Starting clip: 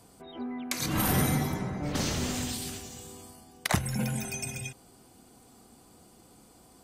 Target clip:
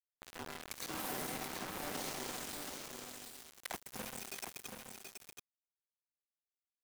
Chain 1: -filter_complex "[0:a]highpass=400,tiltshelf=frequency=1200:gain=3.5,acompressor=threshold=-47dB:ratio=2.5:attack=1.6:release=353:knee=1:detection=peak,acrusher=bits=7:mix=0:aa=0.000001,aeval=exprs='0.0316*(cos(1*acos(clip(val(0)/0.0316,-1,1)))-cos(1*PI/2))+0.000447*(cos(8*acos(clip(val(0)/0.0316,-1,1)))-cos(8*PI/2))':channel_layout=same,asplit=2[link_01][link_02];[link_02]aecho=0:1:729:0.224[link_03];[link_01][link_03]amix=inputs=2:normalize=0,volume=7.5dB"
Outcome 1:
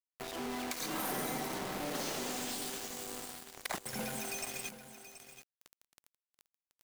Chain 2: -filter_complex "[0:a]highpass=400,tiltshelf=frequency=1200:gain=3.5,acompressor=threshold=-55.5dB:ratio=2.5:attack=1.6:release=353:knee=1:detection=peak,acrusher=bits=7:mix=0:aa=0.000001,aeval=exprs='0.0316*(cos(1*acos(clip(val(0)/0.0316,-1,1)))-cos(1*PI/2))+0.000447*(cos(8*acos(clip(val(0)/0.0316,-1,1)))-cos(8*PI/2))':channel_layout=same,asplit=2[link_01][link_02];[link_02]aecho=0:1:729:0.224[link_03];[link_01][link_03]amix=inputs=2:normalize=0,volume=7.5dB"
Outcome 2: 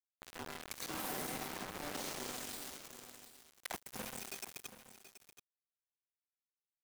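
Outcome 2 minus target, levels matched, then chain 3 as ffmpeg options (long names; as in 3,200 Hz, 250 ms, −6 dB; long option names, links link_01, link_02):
echo-to-direct −7.5 dB
-filter_complex "[0:a]highpass=400,tiltshelf=frequency=1200:gain=3.5,acompressor=threshold=-55.5dB:ratio=2.5:attack=1.6:release=353:knee=1:detection=peak,acrusher=bits=7:mix=0:aa=0.000001,aeval=exprs='0.0316*(cos(1*acos(clip(val(0)/0.0316,-1,1)))-cos(1*PI/2))+0.000447*(cos(8*acos(clip(val(0)/0.0316,-1,1)))-cos(8*PI/2))':channel_layout=same,asplit=2[link_01][link_02];[link_02]aecho=0:1:729:0.531[link_03];[link_01][link_03]amix=inputs=2:normalize=0,volume=7.5dB"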